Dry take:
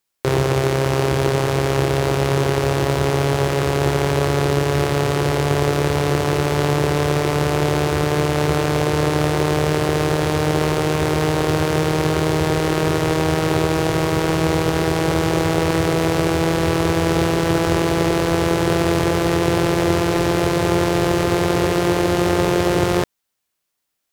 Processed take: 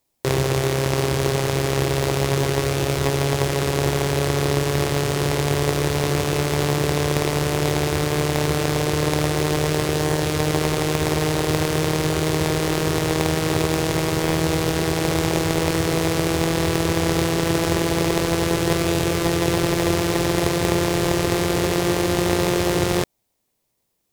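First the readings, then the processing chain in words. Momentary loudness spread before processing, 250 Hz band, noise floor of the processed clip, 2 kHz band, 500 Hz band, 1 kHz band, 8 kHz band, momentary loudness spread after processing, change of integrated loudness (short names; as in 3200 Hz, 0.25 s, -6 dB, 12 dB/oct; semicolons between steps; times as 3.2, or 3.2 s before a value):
1 LU, -2.5 dB, -73 dBFS, -2.0 dB, -3.0 dB, -4.0 dB, +2.5 dB, 1 LU, -2.5 dB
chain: high shelf 2600 Hz +9 dB; in parallel at -5.5 dB: sample-and-hold 29×; on the sum: gain -6 dB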